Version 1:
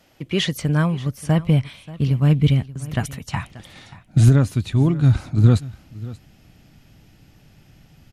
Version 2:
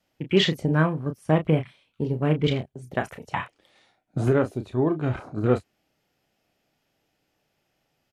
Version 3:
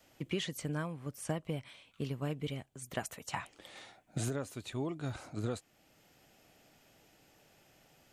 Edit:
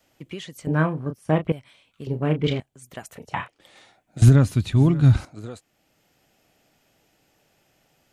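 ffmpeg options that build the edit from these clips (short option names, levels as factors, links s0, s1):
-filter_complex "[1:a]asplit=3[s0][s1][s2];[2:a]asplit=5[s3][s4][s5][s6][s7];[s3]atrim=end=0.672[s8];[s0]atrim=start=0.668:end=1.522[s9];[s4]atrim=start=1.518:end=2.072[s10];[s1]atrim=start=2.068:end=2.602[s11];[s5]atrim=start=2.598:end=3.152[s12];[s2]atrim=start=3.148:end=3.602[s13];[s6]atrim=start=3.598:end=4.222[s14];[0:a]atrim=start=4.218:end=5.252[s15];[s7]atrim=start=5.248[s16];[s8][s9]acrossfade=d=0.004:c1=hsin:c2=hsin[s17];[s17][s10]acrossfade=d=0.004:c1=hsin:c2=hsin[s18];[s18][s11]acrossfade=d=0.004:c1=hsin:c2=hsin[s19];[s19][s12]acrossfade=d=0.004:c1=hsin:c2=hsin[s20];[s20][s13]acrossfade=d=0.004:c1=hsin:c2=hsin[s21];[s21][s14]acrossfade=d=0.004:c1=hsin:c2=hsin[s22];[s22][s15]acrossfade=d=0.004:c1=hsin:c2=hsin[s23];[s23][s16]acrossfade=d=0.004:c1=hsin:c2=hsin"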